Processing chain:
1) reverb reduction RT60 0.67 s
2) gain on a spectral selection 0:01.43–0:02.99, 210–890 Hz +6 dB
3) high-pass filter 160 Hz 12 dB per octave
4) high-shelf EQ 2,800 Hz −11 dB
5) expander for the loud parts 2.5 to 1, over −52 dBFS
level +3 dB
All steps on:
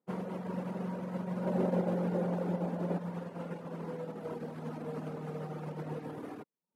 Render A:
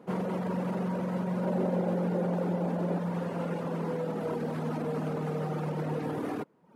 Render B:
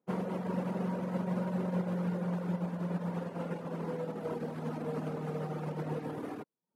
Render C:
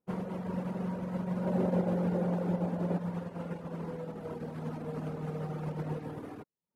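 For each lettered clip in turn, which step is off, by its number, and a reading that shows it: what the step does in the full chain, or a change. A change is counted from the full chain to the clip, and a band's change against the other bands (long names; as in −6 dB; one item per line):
5, change in crest factor −3.5 dB
2, 500 Hz band −2.5 dB
3, 125 Hz band +2.5 dB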